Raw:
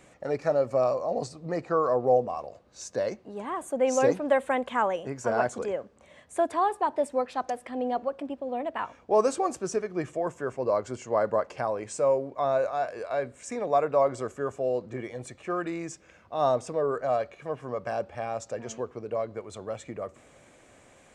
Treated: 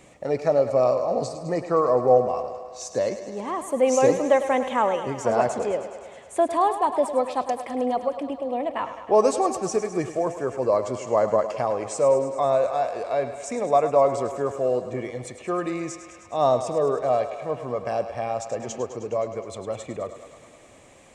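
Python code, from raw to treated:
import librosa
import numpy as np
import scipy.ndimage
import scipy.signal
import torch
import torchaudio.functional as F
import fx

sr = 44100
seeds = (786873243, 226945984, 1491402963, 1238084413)

y = fx.peak_eq(x, sr, hz=1500.0, db=-8.5, octaves=0.33)
y = fx.echo_thinned(y, sr, ms=104, feedback_pct=76, hz=290.0, wet_db=-11.0)
y = y * 10.0 ** (4.5 / 20.0)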